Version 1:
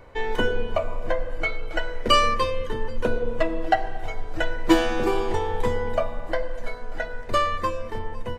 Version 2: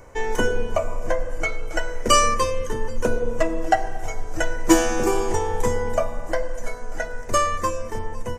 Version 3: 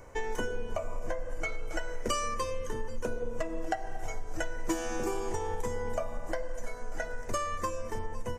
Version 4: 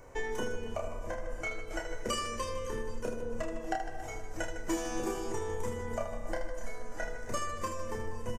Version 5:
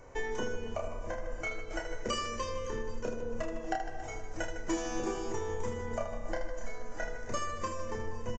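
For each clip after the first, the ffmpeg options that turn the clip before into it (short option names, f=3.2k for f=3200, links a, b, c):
-af "highshelf=f=5k:t=q:w=3:g=8,volume=2dB"
-af "acompressor=threshold=-24dB:ratio=5,volume=-4.5dB"
-af "aecho=1:1:30|78|154.8|277.7|474.3:0.631|0.398|0.251|0.158|0.1,volume=-3dB"
-af "aresample=16000,aresample=44100"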